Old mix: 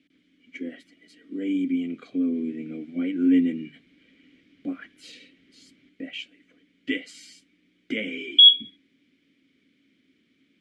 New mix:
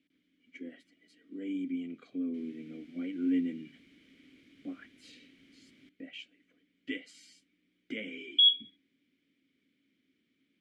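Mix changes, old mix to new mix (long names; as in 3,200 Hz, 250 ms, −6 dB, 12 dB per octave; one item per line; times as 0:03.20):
speech −10.0 dB
background: remove high-frequency loss of the air 98 metres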